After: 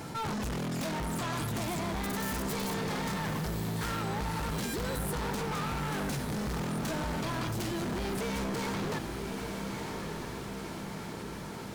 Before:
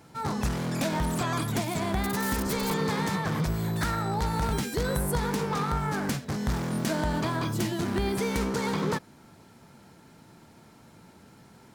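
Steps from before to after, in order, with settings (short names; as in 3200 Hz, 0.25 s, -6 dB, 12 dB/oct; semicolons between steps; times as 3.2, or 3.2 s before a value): vocal rider; hard clip -33.5 dBFS, distortion -6 dB; on a send: diffused feedback echo 1.166 s, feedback 50%, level -8.5 dB; on the sum: fast leveller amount 50%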